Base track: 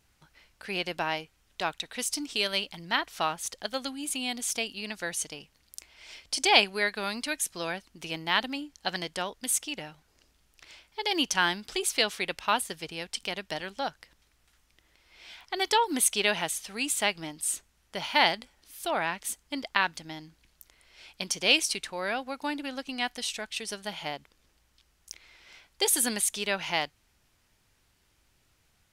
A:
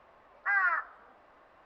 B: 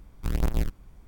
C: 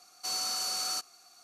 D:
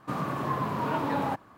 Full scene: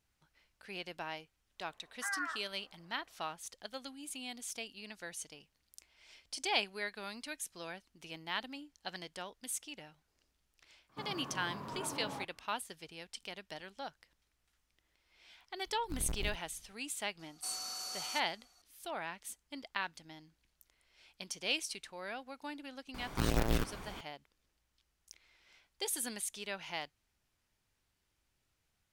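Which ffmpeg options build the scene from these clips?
ffmpeg -i bed.wav -i cue0.wav -i cue1.wav -i cue2.wav -i cue3.wav -filter_complex "[2:a]asplit=2[link_01][link_02];[0:a]volume=-12dB[link_03];[link_02]asplit=2[link_04][link_05];[link_05]highpass=frequency=720:poles=1,volume=27dB,asoftclip=type=tanh:threshold=-17dB[link_06];[link_04][link_06]amix=inputs=2:normalize=0,lowpass=frequency=4400:poles=1,volume=-6dB[link_07];[1:a]atrim=end=1.65,asetpts=PTS-STARTPTS,volume=-11dB,afade=type=in:duration=0.1,afade=type=out:start_time=1.55:duration=0.1,adelay=1560[link_08];[4:a]atrim=end=1.57,asetpts=PTS-STARTPTS,volume=-14.5dB,afade=type=in:duration=0.004:curve=hsin,afade=type=out:start_time=1.566:duration=0.004:curve=hsin,adelay=10890[link_09];[link_01]atrim=end=1.07,asetpts=PTS-STARTPTS,volume=-14.5dB,afade=type=in:duration=0.004:curve=hsin,afade=type=out:start_time=1.066:duration=0.004:curve=hsin,adelay=15660[link_10];[3:a]atrim=end=1.43,asetpts=PTS-STARTPTS,volume=-9.5dB,afade=type=in:duration=0.004:curve=hsin,afade=type=out:start_time=1.426:duration=0.004:curve=hsin,adelay=17190[link_11];[link_07]atrim=end=1.07,asetpts=PTS-STARTPTS,volume=-2dB,afade=type=in:duration=0.004:curve=hsin,afade=type=out:start_time=1.066:duration=0.004:curve=hsin,adelay=22940[link_12];[link_03][link_08][link_09][link_10][link_11][link_12]amix=inputs=6:normalize=0" out.wav

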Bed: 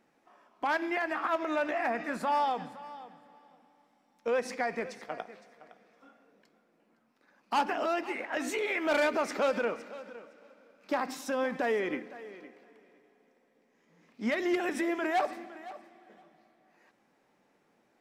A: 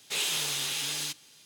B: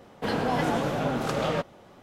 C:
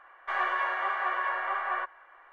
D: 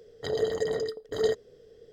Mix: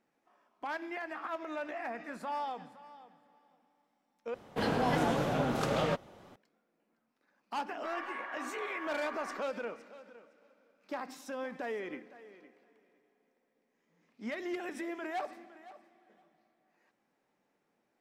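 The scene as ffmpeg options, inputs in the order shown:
ffmpeg -i bed.wav -i cue0.wav -i cue1.wav -i cue2.wav -filter_complex "[0:a]volume=-8.5dB,asplit=2[link_01][link_02];[link_01]atrim=end=4.344[link_03];[2:a]atrim=end=2.02,asetpts=PTS-STARTPTS,volume=-3.5dB[link_04];[link_02]atrim=start=6.356[link_05];[3:a]atrim=end=2.32,asetpts=PTS-STARTPTS,volume=-13dB,afade=type=in:duration=0.004:curve=hsin,afade=type=out:start_time=2.316:duration=0.004:curve=hsin,adelay=7560[link_06];[link_03][link_04]acrossfade=duration=0.004:curve1=hsin:curve2=hsin[link_07];[link_07][link_05]acrossfade=duration=0.004:curve1=hsin:curve2=hsin[link_08];[link_08][link_06]amix=inputs=2:normalize=0" out.wav

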